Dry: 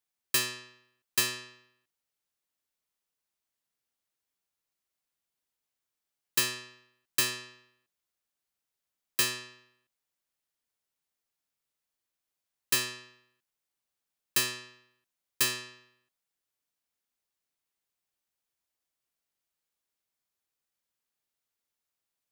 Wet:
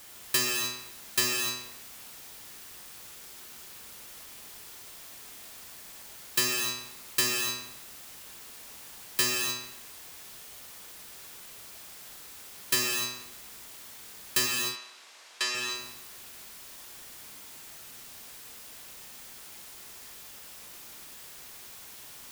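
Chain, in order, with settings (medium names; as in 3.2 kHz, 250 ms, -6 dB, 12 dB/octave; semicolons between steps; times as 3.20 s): added noise white -50 dBFS; 14.46–15.55 s: band-pass 570–5700 Hz; gated-style reverb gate 320 ms flat, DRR 0 dB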